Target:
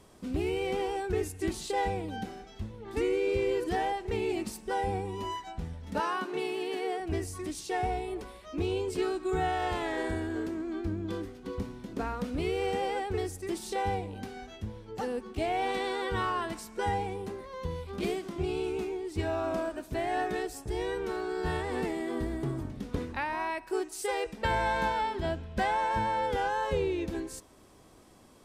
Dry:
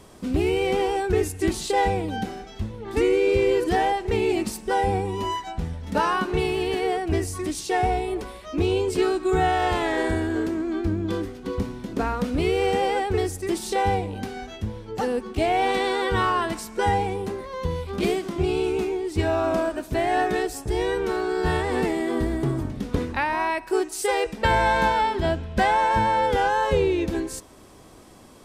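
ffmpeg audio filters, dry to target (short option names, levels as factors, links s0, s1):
-filter_complex "[0:a]asettb=1/sr,asplit=3[s0][s1][s2];[s0]atrim=end=6.004[s3];[s1]atrim=start=6:end=7,asetpts=PTS-STARTPTS,afade=t=in:d=0.004:c=qsin,afade=t=out:st=0.996:d=0.004:c=qsin,highpass=f=220:w=0.5412,highpass=f=220:w=1.3066[s4];[s2]atrim=start=6.996[s5];[s3][s4]acrossfade=d=0.004:c1=hsin:c2=qsin[s6];[s6][s5]acrossfade=d=0.004:c1=qsin:c2=hsin,volume=0.376"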